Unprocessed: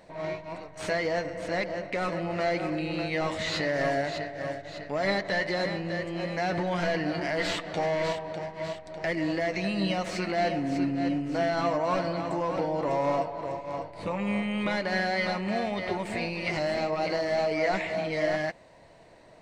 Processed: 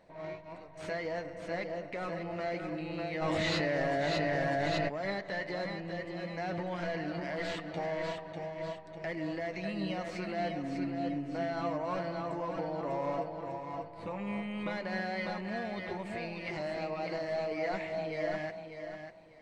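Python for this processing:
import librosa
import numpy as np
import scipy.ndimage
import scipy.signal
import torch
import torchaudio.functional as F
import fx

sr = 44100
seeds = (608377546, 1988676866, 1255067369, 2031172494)

p1 = fx.high_shelf(x, sr, hz=4600.0, db=-7.5)
p2 = p1 + fx.echo_feedback(p1, sr, ms=594, feedback_pct=23, wet_db=-8, dry=0)
p3 = fx.env_flatten(p2, sr, amount_pct=100, at=(3.21, 4.88), fade=0.02)
y = F.gain(torch.from_numpy(p3), -8.0).numpy()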